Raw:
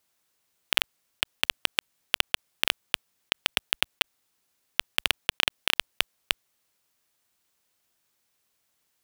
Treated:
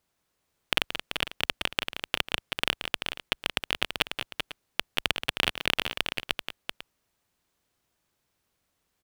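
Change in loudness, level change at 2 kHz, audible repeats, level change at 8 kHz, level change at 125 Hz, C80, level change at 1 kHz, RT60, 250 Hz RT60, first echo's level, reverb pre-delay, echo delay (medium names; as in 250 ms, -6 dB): -2.0 dB, -1.0 dB, 3, -5.0 dB, +7.5 dB, no reverb, +1.0 dB, no reverb, no reverb, -9.5 dB, no reverb, 177 ms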